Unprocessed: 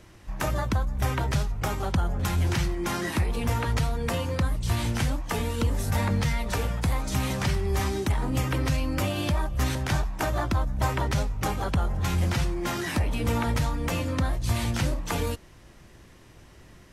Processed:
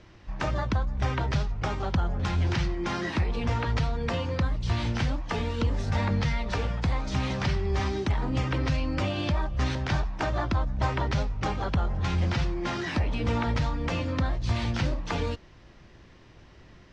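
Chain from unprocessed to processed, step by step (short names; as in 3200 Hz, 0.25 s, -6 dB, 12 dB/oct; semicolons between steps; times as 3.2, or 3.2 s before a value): LPF 5400 Hz 24 dB/oct; gain -1 dB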